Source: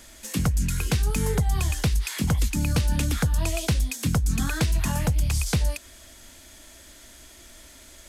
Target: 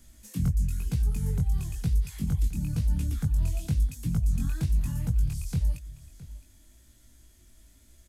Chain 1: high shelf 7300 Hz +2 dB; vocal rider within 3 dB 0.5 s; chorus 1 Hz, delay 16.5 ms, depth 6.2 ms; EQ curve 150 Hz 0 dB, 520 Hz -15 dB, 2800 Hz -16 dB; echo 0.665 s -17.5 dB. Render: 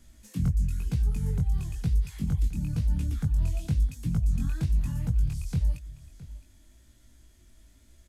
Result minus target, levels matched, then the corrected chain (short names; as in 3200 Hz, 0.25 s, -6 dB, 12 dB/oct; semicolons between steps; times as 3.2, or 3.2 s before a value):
8000 Hz band -4.5 dB
high shelf 7300 Hz +10.5 dB; vocal rider within 3 dB 0.5 s; chorus 1 Hz, delay 16.5 ms, depth 6.2 ms; EQ curve 150 Hz 0 dB, 520 Hz -15 dB, 2800 Hz -16 dB; echo 0.665 s -17.5 dB